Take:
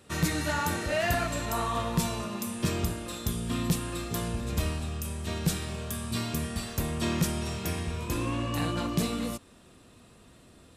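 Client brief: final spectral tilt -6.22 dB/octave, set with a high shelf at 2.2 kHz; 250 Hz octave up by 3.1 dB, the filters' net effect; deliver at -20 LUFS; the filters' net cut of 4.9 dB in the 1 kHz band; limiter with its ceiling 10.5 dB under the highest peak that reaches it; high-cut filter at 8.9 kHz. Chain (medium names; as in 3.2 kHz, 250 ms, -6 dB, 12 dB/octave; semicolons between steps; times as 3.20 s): low-pass 8.9 kHz; peaking EQ 250 Hz +4.5 dB; peaking EQ 1 kHz -5.5 dB; treble shelf 2.2 kHz -6 dB; trim +14 dB; peak limiter -10.5 dBFS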